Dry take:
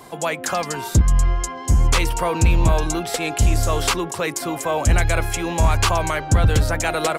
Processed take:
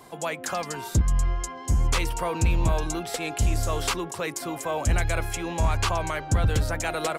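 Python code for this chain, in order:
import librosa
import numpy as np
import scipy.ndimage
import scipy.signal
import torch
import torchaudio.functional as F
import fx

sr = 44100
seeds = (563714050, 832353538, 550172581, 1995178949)

y = fx.high_shelf(x, sr, hz=11000.0, db=-7.5, at=(5.38, 6.15))
y = y * librosa.db_to_amplitude(-6.5)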